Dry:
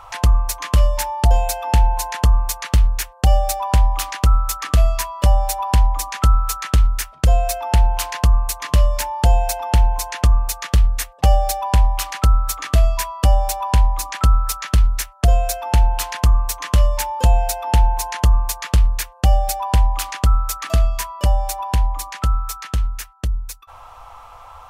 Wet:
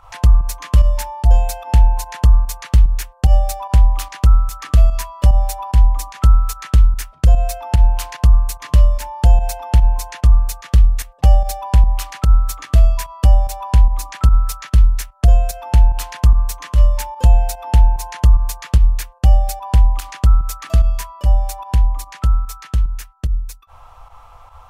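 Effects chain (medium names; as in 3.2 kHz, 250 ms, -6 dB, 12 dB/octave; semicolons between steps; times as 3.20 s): bass shelf 200 Hz +9 dB; volume shaper 147 bpm, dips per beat 1, -9 dB, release 87 ms; trim -4.5 dB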